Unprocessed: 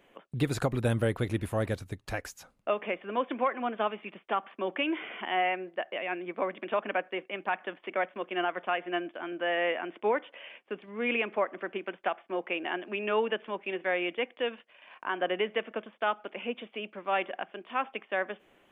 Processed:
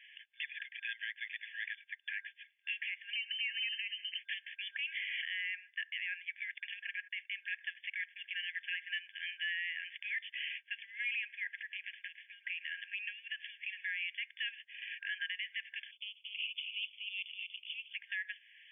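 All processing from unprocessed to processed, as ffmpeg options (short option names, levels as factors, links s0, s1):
-filter_complex "[0:a]asettb=1/sr,asplit=3[s0][s1][s2];[s0]atrim=end=3.134[s3];[s1]atrim=start=3.13:end=4.19,asetpts=PTS-STARTPTS,afade=t=in:d=0.004:c=qsin,afade=t=out:st=1.056:d=0.004:c=qsin,acompressor=threshold=0.00708:ratio=6:attack=3.2:release=140:knee=1:detection=peak,lowpass=f=2800:t=q:w=0.5098,lowpass=f=2800:t=q:w=0.6013,lowpass=f=2800:t=q:w=0.9,lowpass=f=2800:t=q:w=2.563,afreqshift=-3300[s4];[s2]atrim=start=4.186[s5];[s3][s4]acrossfade=d=0.004:c1=hsin:c2=qsin[s6];[s6][s5]acrossfade=d=0.004:c1=qsin:c2=hsin,asettb=1/sr,asplit=3[s7][s8][s9];[s7]atrim=end=6.544[s10];[s8]atrim=start=6.54:end=7.18,asetpts=PTS-STARTPTS,afade=t=in:d=0.004:c=qsin,afade=t=out:st=0.636:d=0.004:c=qsin,agate=range=0.0501:threshold=0.00316:ratio=16:release=100:detection=peak,acompressor=threshold=0.0282:ratio=10:attack=3.2:release=140:knee=1:detection=peak[s11];[s9]atrim=start=7.176[s12];[s10][s11]acrossfade=d=0.004:c1=hsin:c2=qsin[s13];[s13][s12]acrossfade=d=0.004:c1=qsin:c2=hsin,asettb=1/sr,asplit=3[s14][s15][s16];[s14]atrim=end=11.604[s17];[s15]atrim=start=11.6:end=13.86,asetpts=PTS-STARTPTS,afade=t=in:d=0.004:c=qsin,afade=t=out:st=2.256:d=0.004:c=qsin,acompressor=threshold=0.00794:ratio=4:attack=3.2:release=140:knee=1:detection=peak,asplit=4[s18][s19][s20][s21];[s19]adelay=109,afreqshift=-66,volume=0.141[s22];[s20]adelay=218,afreqshift=-132,volume=0.0507[s23];[s21]adelay=327,afreqshift=-198,volume=0.0184[s24];[s18][s22][s23][s24]amix=inputs=4:normalize=0,atrim=end_sample=99666[s25];[s16]atrim=start=13.856[s26];[s17][s25]acrossfade=d=0.004:c1=hsin:c2=qsin[s27];[s27][s26]acrossfade=d=0.004:c1=qsin:c2=hsin,asettb=1/sr,asplit=3[s28][s29][s30];[s28]atrim=end=15.914[s31];[s29]atrim=start=15.91:end=17.93,asetpts=PTS-STARTPTS,afade=t=in:d=0.004:c=qsin,afade=t=out:st=2.016:d=0.004:c=qsin,acompressor=threshold=0.0126:ratio=2.5:attack=3.2:release=140:knee=1:detection=peak,asuperstop=centerf=1500:order=8:qfactor=0.8,aecho=1:1:241:0.596,atrim=end_sample=89082[s32];[s30]atrim=start=17.926[s33];[s31][s32]acrossfade=d=0.004:c1=hsin:c2=qsin[s34];[s34][s33]acrossfade=d=0.004:c1=qsin:c2=hsin,afftfilt=real='re*between(b*sr/4096,1600,3500)':imag='im*between(b*sr/4096,1600,3500)':win_size=4096:overlap=0.75,alimiter=level_in=5.62:limit=0.0631:level=0:latency=1:release=350,volume=0.178,volume=3.35"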